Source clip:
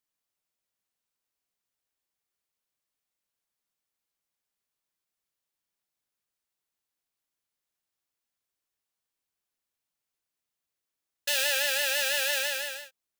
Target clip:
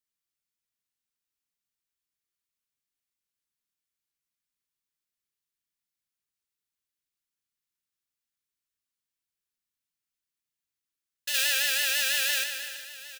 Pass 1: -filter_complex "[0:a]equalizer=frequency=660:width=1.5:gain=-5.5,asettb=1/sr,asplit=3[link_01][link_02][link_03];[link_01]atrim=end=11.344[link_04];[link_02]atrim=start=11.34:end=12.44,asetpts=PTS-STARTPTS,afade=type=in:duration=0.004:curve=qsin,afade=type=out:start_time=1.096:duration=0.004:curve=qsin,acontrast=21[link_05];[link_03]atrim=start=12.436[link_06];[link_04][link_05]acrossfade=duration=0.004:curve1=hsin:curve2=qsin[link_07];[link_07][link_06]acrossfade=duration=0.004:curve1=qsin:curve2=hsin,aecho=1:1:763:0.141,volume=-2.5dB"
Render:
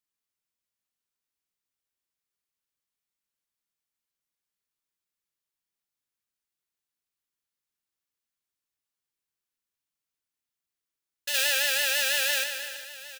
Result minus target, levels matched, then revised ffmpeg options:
500 Hz band +7.5 dB
-filter_complex "[0:a]equalizer=frequency=660:width=1.5:gain=-16.5,asettb=1/sr,asplit=3[link_01][link_02][link_03];[link_01]atrim=end=11.344[link_04];[link_02]atrim=start=11.34:end=12.44,asetpts=PTS-STARTPTS,afade=type=in:duration=0.004:curve=qsin,afade=type=out:start_time=1.096:duration=0.004:curve=qsin,acontrast=21[link_05];[link_03]atrim=start=12.436[link_06];[link_04][link_05]acrossfade=duration=0.004:curve1=hsin:curve2=qsin[link_07];[link_07][link_06]acrossfade=duration=0.004:curve1=qsin:curve2=hsin,aecho=1:1:763:0.141,volume=-2.5dB"

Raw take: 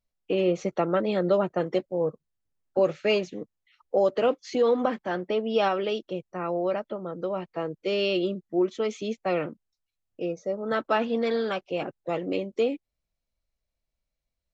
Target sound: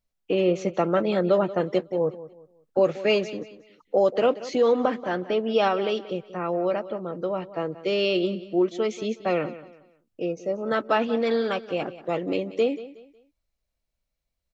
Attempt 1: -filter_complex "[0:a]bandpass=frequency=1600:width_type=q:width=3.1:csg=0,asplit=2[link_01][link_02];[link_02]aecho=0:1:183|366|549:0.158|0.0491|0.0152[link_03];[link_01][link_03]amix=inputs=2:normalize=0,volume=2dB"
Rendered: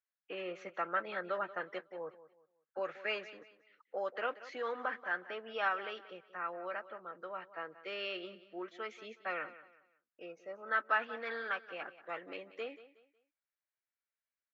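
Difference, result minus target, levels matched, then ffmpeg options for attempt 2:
2,000 Hz band +11.0 dB
-filter_complex "[0:a]asplit=2[link_01][link_02];[link_02]aecho=0:1:183|366|549:0.158|0.0491|0.0152[link_03];[link_01][link_03]amix=inputs=2:normalize=0,volume=2dB"

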